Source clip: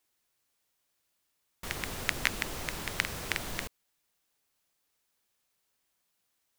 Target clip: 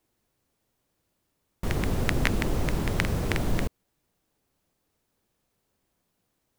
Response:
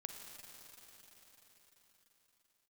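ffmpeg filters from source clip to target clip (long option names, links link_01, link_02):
-af "tiltshelf=frequency=750:gain=9,volume=7.5dB"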